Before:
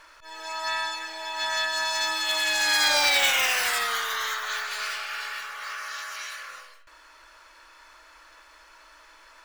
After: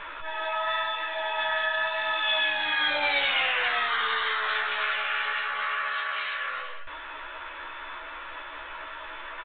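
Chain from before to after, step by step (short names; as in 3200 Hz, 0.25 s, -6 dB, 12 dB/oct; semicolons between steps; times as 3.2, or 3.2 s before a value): in parallel at +2 dB: limiter -19.5 dBFS, peak gain reduction 8 dB; on the sum: compressor 2:1, threshold -40 dBFS, peak gain reduction 14 dB; flange 0.85 Hz, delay 4.7 ms, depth 9.5 ms, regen -41%; doubler 14 ms -2.5 dB; gain +9 dB; A-law 64 kbps 8000 Hz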